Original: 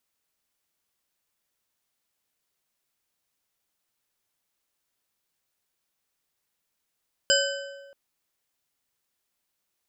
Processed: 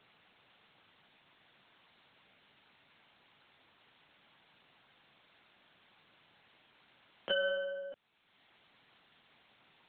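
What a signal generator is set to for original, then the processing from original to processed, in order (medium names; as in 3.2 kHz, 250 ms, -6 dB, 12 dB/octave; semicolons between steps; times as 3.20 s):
metal hit bar, length 0.63 s, lowest mode 557 Hz, modes 5, decay 1.41 s, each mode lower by 0 dB, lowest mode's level -22 dB
peak limiter -19.5 dBFS; LPC vocoder at 8 kHz pitch kept; three bands compressed up and down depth 70%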